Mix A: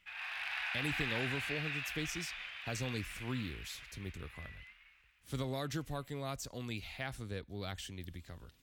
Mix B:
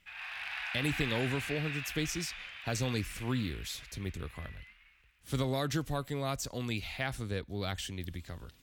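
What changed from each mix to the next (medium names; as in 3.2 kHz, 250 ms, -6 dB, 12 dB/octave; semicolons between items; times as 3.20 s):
speech +6.0 dB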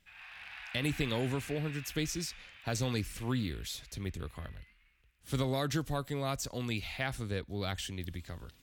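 background -8.0 dB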